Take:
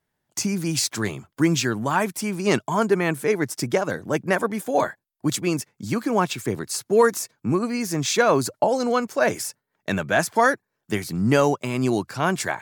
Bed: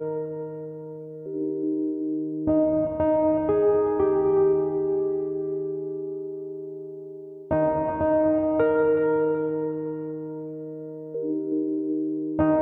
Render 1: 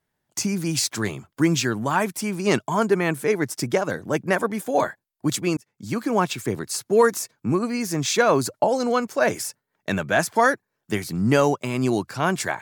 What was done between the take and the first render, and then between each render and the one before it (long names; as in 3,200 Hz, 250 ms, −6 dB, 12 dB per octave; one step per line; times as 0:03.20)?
0:05.57–0:06.18: fade in equal-power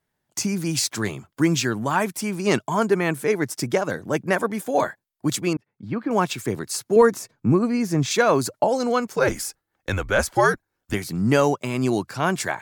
0:05.53–0:06.11: high-frequency loss of the air 420 metres
0:06.96–0:08.11: spectral tilt −2 dB per octave
0:09.16–0:10.94: frequency shifter −99 Hz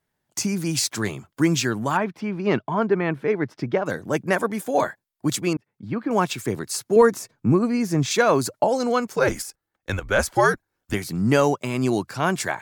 0:01.97–0:03.86: high-frequency loss of the air 310 metres
0:09.42–0:10.11: output level in coarse steps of 12 dB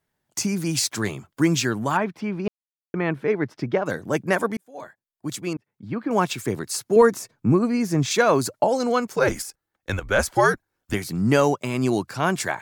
0:02.48–0:02.94: silence
0:04.57–0:06.19: fade in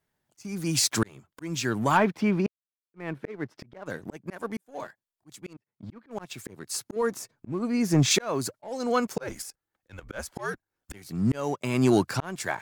volume swells 691 ms
leveller curve on the samples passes 1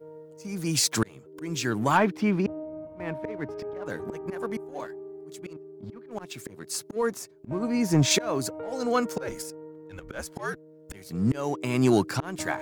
mix in bed −16 dB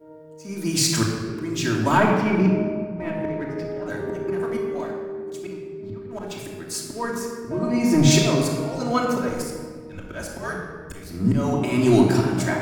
rectangular room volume 2,300 cubic metres, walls mixed, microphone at 2.8 metres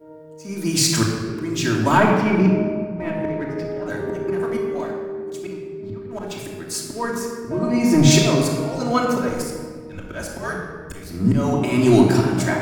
level +2.5 dB